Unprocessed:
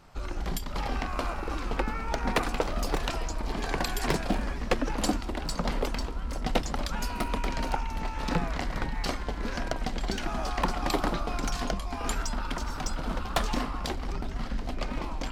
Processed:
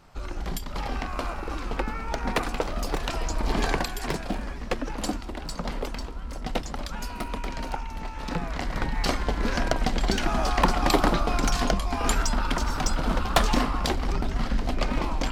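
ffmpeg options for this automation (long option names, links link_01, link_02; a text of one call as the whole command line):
ffmpeg -i in.wav -af "volume=16dB,afade=type=in:start_time=3.05:duration=0.57:silence=0.446684,afade=type=out:start_time=3.62:duration=0.27:silence=0.334965,afade=type=in:start_time=8.37:duration=0.88:silence=0.375837" out.wav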